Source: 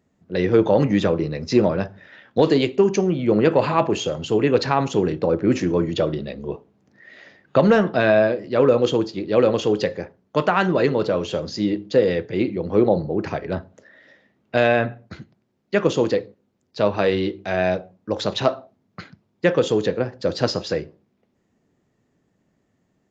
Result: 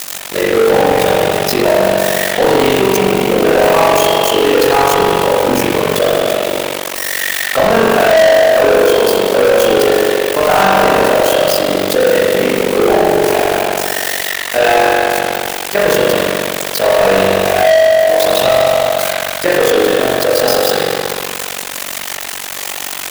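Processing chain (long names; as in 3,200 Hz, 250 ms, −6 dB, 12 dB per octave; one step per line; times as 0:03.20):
spike at every zero crossing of −14 dBFS
high-pass filter 450 Hz 6 dB per octave
parametric band 720 Hz +5.5 dB 0.68 octaves
spring reverb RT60 2.4 s, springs 31 ms, chirp 65 ms, DRR −8.5 dB
amplitude modulation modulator 47 Hz, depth 75%
leveller curve on the samples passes 5
level −8.5 dB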